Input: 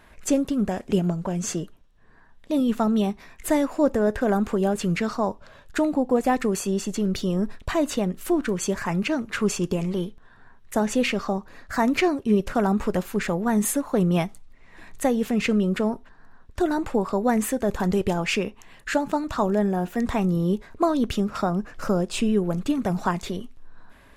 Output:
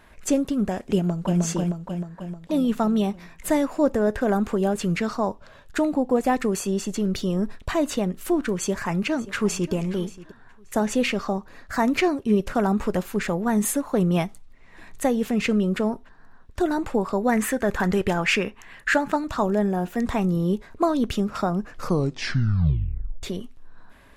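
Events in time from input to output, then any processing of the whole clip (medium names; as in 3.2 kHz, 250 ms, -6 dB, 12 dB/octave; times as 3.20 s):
0.96–1.40 s: echo throw 310 ms, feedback 60%, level -2 dB
8.57–9.73 s: echo throw 580 ms, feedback 20%, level -18 dB
17.32–19.16 s: peaking EQ 1.7 kHz +9 dB 1.1 oct
21.72 s: tape stop 1.51 s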